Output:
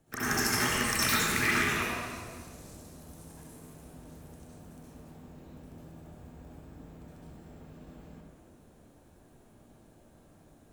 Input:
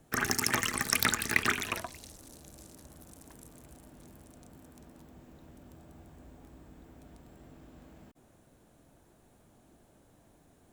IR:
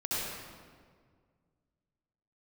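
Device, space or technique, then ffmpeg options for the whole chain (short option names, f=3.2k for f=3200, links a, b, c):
stairwell: -filter_complex "[1:a]atrim=start_sample=2205[a];[0:a][a]afir=irnorm=-1:irlink=0,volume=-4dB"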